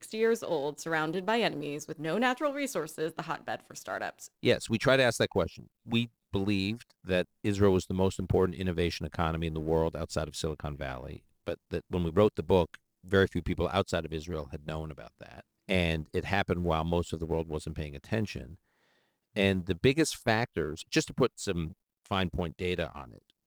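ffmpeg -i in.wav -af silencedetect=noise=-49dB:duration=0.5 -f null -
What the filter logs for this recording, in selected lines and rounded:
silence_start: 18.55
silence_end: 19.36 | silence_duration: 0.81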